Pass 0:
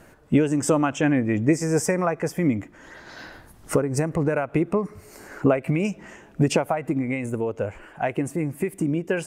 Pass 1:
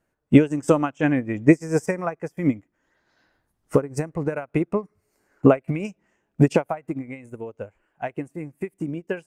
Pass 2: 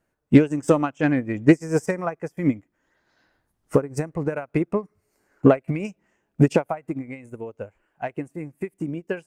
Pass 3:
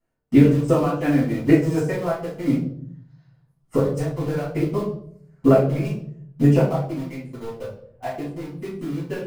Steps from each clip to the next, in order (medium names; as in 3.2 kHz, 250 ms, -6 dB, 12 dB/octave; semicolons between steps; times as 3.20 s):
upward expansion 2.5:1, over -35 dBFS; trim +7 dB
self-modulated delay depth 0.074 ms
in parallel at -5.5 dB: bit crusher 5-bit; on the sum: reverberation RT60 0.65 s, pre-delay 4 ms, DRR -10 dB; trim -16.5 dB